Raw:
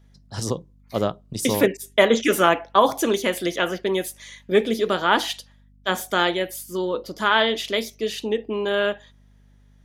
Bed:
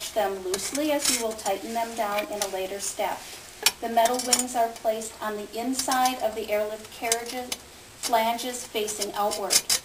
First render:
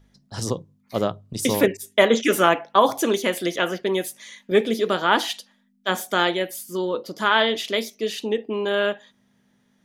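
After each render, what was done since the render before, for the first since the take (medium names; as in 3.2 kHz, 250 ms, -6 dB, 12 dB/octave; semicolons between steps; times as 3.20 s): de-hum 50 Hz, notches 3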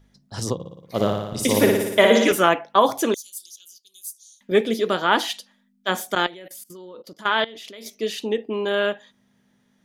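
0.54–2.32 s: flutter echo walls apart 9.9 m, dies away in 1 s; 3.14–4.41 s: inverse Chebyshev high-pass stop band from 2.1 kHz, stop band 50 dB; 6.15–7.86 s: level held to a coarse grid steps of 20 dB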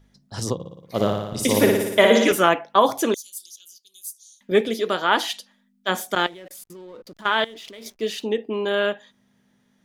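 4.68–5.33 s: bass shelf 220 Hz -8 dB; 6.14–8.23 s: hysteresis with a dead band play -45.5 dBFS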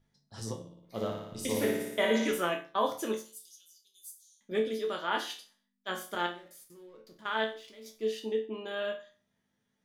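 chord resonator D2 minor, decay 0.37 s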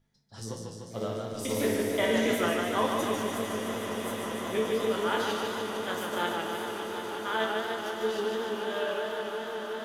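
echo with a slow build-up 184 ms, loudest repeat 8, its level -15 dB; modulated delay 149 ms, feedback 71%, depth 102 cents, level -4 dB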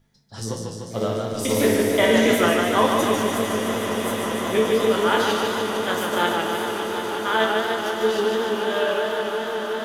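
trim +9 dB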